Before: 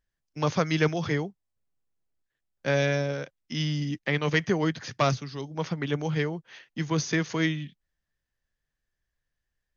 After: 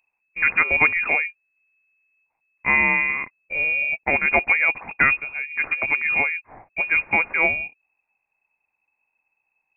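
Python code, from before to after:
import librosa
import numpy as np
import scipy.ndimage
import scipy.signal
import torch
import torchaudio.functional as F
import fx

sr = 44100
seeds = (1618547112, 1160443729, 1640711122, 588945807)

y = fx.freq_invert(x, sr, carrier_hz=2600)
y = y * 10.0 ** (6.0 / 20.0)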